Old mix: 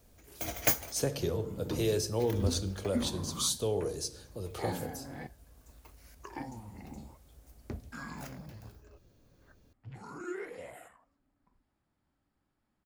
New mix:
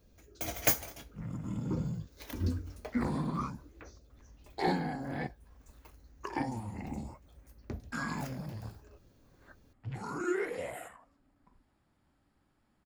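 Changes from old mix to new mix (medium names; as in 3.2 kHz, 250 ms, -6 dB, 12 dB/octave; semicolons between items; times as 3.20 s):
speech: muted; second sound +7.0 dB; reverb: off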